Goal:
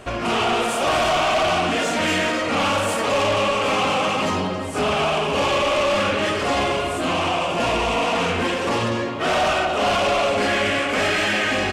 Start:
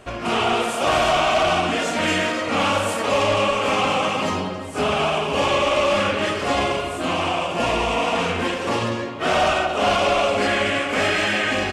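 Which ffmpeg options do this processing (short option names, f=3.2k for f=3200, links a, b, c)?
-filter_complex "[0:a]asplit=2[a][b];[b]alimiter=limit=-20dB:level=0:latency=1,volume=-3dB[c];[a][c]amix=inputs=2:normalize=0,asoftclip=type=tanh:threshold=-14.5dB"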